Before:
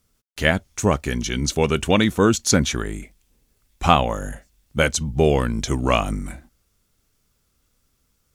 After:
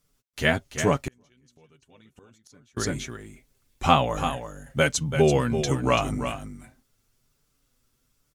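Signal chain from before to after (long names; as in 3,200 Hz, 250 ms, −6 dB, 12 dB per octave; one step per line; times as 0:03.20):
flanger 1.2 Hz, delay 6.6 ms, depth 1.8 ms, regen +4%
single-tap delay 336 ms −9 dB
0:01.02–0:02.77: gate with flip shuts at −18 dBFS, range −35 dB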